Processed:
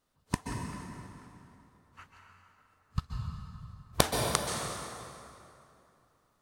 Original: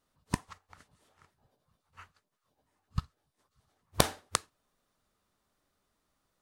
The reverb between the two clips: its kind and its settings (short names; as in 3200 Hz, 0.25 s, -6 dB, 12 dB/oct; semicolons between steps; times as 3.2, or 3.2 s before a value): plate-style reverb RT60 2.8 s, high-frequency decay 0.7×, pre-delay 0.115 s, DRR 0.5 dB